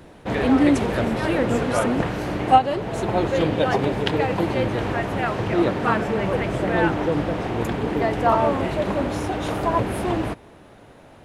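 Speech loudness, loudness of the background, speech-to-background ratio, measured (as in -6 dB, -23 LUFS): -23.5 LUFS, -22.5 LUFS, -1.0 dB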